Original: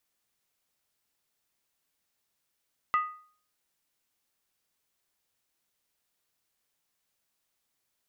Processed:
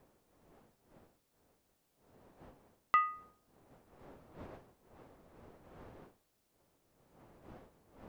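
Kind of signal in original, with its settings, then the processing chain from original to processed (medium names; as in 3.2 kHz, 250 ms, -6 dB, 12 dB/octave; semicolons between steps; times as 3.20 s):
skin hit, lowest mode 1.24 kHz, decay 0.48 s, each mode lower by 10 dB, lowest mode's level -20 dB
wind noise 620 Hz -60 dBFS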